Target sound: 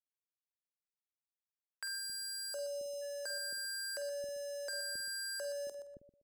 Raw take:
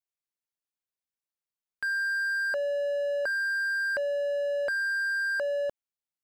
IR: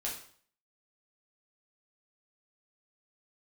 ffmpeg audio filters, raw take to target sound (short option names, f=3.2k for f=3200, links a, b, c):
-filter_complex "[0:a]highshelf=f=4.6k:t=q:w=3:g=7,aeval=exprs='val(0)*gte(abs(val(0)),0.00447)':c=same,equalizer=f=9k:w=2:g=4,asplit=2[a][b];[b]aecho=0:1:123|246:0.266|0.0479[c];[a][c]amix=inputs=2:normalize=0,acrossover=split=440|3000[d][e][f];[e]acompressor=threshold=-47dB:ratio=5[g];[d][g][f]amix=inputs=3:normalize=0,asplit=3[h][i][j];[h]afade=t=out:st=1.98:d=0.02[k];[i]asuperstop=centerf=1900:order=12:qfactor=2.5,afade=t=in:st=1.98:d=0.02,afade=t=out:st=3.01:d=0.02[l];[j]afade=t=in:st=3.01:d=0.02[m];[k][l][m]amix=inputs=3:normalize=0,asplit=2[n][o];[o]adelay=47,volume=-11dB[p];[n][p]amix=inputs=2:normalize=0,acrossover=split=390[q][r];[q]adelay=270[s];[s][r]amix=inputs=2:normalize=0,volume=-2.5dB"